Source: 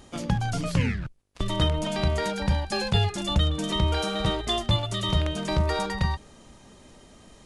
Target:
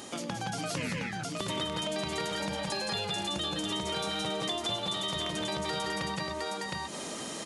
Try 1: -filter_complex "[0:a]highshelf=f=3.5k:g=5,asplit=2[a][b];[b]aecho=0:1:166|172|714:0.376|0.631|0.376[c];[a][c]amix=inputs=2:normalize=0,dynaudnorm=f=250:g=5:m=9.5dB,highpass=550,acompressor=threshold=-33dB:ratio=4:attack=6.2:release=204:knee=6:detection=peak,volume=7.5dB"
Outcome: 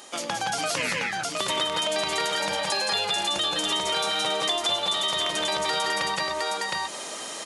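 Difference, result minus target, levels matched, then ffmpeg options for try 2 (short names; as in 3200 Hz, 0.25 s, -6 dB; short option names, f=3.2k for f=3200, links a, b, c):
250 Hz band -9.5 dB; compressor: peak gain reduction -8 dB
-filter_complex "[0:a]highshelf=f=3.5k:g=5,asplit=2[a][b];[b]aecho=0:1:166|172|714:0.376|0.631|0.376[c];[a][c]amix=inputs=2:normalize=0,dynaudnorm=f=250:g=5:m=9.5dB,highpass=220,acompressor=threshold=-43dB:ratio=4:attack=6.2:release=204:knee=6:detection=peak,volume=7.5dB"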